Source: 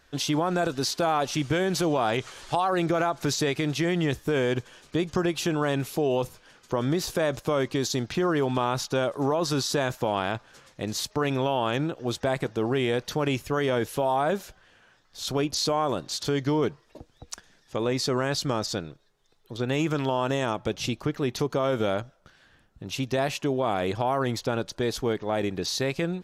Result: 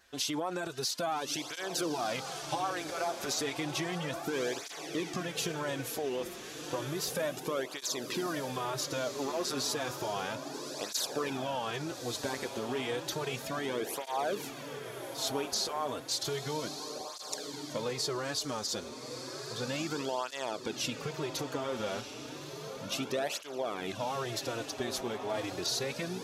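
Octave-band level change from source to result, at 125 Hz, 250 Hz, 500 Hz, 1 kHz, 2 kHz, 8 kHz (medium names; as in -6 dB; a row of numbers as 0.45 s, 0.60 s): -13.0 dB, -10.5 dB, -9.0 dB, -8.0 dB, -6.5 dB, -1.5 dB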